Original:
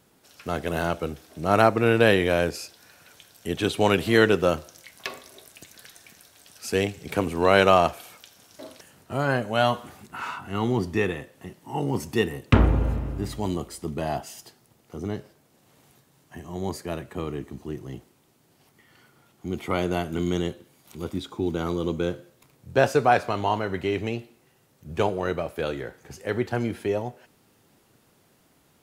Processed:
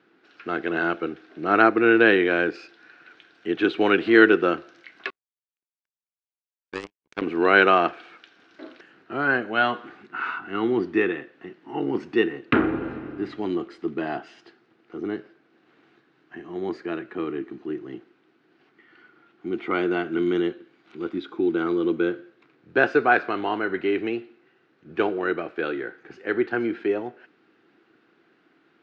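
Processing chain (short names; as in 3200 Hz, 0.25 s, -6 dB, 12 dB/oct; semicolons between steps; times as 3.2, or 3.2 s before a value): speaker cabinet 290–3500 Hz, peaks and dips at 330 Hz +9 dB, 580 Hz -9 dB, 930 Hz -7 dB, 1500 Hz +7 dB, 3300 Hz -4 dB; 5.1–7.22 power-law curve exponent 3; gain +2 dB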